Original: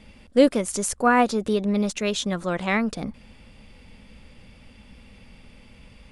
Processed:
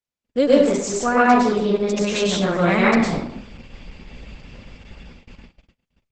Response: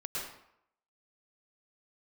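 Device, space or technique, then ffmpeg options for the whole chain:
speakerphone in a meeting room: -filter_complex "[1:a]atrim=start_sample=2205[a];[0:a][a]afir=irnorm=-1:irlink=0,asplit=2[b][c];[c]adelay=120,highpass=300,lowpass=3.4k,asoftclip=type=hard:threshold=-12dB,volume=-17dB[d];[b][d]amix=inputs=2:normalize=0,dynaudnorm=f=290:g=9:m=6dB,agate=range=-50dB:threshold=-40dB:ratio=16:detection=peak,volume=1.5dB" -ar 48000 -c:a libopus -b:a 12k

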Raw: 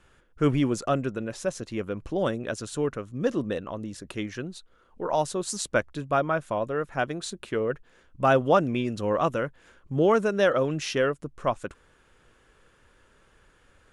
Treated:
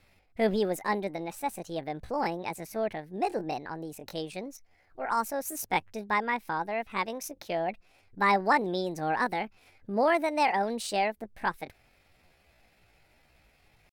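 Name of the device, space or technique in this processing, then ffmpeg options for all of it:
chipmunk voice: -filter_complex "[0:a]asetrate=66075,aresample=44100,atempo=0.66742,asettb=1/sr,asplit=3[a][b][c];[a]atrim=end=1.814[d];[b]atrim=start=1.81:end=3.82,asetpts=PTS-STARTPTS,afade=t=in:d=0.004:c=qsin,afade=t=out:st=2.006:d=0.004:c=qsin,adynamicequalizer=threshold=0.00316:dfrequency=4800:dqfactor=0.7:tfrequency=4800:tqfactor=0.7:attack=5:release=100:ratio=0.375:range=2.5:mode=cutabove:tftype=highshelf[e];[c]atrim=start=3.816[f];[d][e]acrossfade=d=0.004:c1=hsin:c2=qsin[g];[g][f]acrossfade=d=0.004:c1=qsin:c2=hsin,volume=-3.5dB"

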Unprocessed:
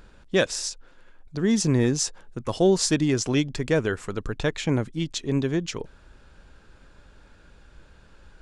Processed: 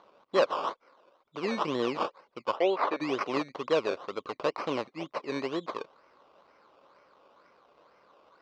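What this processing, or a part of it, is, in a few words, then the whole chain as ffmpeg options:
circuit-bent sampling toy: -filter_complex "[0:a]acrusher=samples=17:mix=1:aa=0.000001:lfo=1:lforange=10.2:lforate=2.1,highpass=410,equalizer=f=550:t=q:w=4:g=5,equalizer=f=1.1k:t=q:w=4:g=10,equalizer=f=1.7k:t=q:w=4:g=-8,equalizer=f=3.4k:t=q:w=4:g=-3,lowpass=f=4.6k:w=0.5412,lowpass=f=4.6k:w=1.3066,asplit=3[a][b][c];[a]afade=t=out:st=2.55:d=0.02[d];[b]bass=f=250:g=-15,treble=f=4k:g=-15,afade=t=in:st=2.55:d=0.02,afade=t=out:st=3:d=0.02[e];[c]afade=t=in:st=3:d=0.02[f];[d][e][f]amix=inputs=3:normalize=0,volume=-3dB"

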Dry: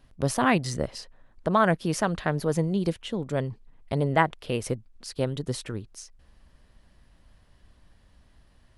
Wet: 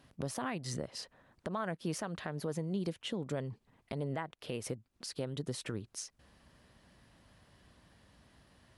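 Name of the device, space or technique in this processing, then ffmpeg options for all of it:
podcast mastering chain: -af "highpass=100,deesser=0.5,acompressor=threshold=-36dB:ratio=2.5,alimiter=level_in=3.5dB:limit=-24dB:level=0:latency=1:release=225,volume=-3.5dB,volume=1.5dB" -ar 48000 -c:a libmp3lame -b:a 96k

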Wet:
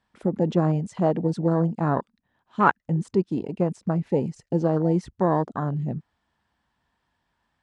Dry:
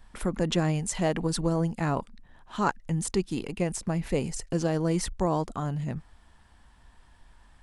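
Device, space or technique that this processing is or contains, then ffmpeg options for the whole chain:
over-cleaned archive recording: -filter_complex "[0:a]asettb=1/sr,asplit=3[a][b][c];[a]atrim=end=2.604[d];[b]atrim=start=2.6:end=3.3,asetpts=PTS-STARTPTS,afade=t=in:d=0.004:c=qsin,afade=t=out:st=0.696:d=0.004:c=qsin,equalizer=f=1.3k:w=1.3:g=4.5[e];[c]atrim=start=3.296[f];[d][e]acrossfade=d=0.004:c1=hsin:c2=qsin[g];[g][f]acrossfade=d=0.004:c1=qsin:c2=hsin,highpass=110,lowpass=6k,afwtdn=0.0251,volume=5dB"

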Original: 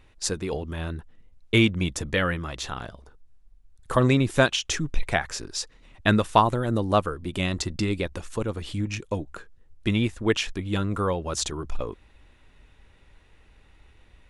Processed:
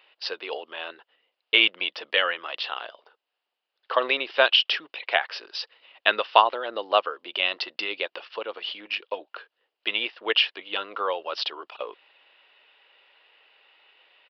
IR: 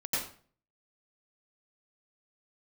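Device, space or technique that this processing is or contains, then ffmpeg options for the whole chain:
musical greeting card: -af "aresample=11025,aresample=44100,highpass=f=500:w=0.5412,highpass=f=500:w=1.3066,equalizer=f=2.9k:t=o:w=0.32:g=11,volume=1.5dB"

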